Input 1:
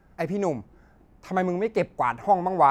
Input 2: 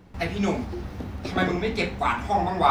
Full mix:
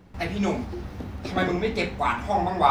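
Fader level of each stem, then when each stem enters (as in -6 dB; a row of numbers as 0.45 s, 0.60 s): -9.0 dB, -1.0 dB; 0.00 s, 0.00 s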